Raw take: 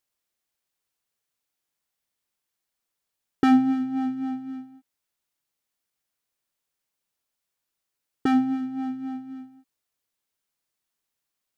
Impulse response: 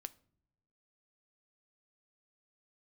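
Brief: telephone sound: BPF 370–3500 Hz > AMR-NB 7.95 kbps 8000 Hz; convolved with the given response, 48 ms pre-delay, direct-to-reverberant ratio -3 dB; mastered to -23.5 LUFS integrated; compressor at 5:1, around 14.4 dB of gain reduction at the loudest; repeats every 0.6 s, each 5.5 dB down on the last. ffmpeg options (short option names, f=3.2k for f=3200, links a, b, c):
-filter_complex "[0:a]acompressor=threshold=-30dB:ratio=5,aecho=1:1:600|1200|1800|2400|3000|3600|4200:0.531|0.281|0.149|0.079|0.0419|0.0222|0.0118,asplit=2[a][b];[1:a]atrim=start_sample=2205,adelay=48[c];[b][c]afir=irnorm=-1:irlink=0,volume=7.5dB[d];[a][d]amix=inputs=2:normalize=0,highpass=370,lowpass=3.5k,volume=15.5dB" -ar 8000 -c:a libopencore_amrnb -b:a 7950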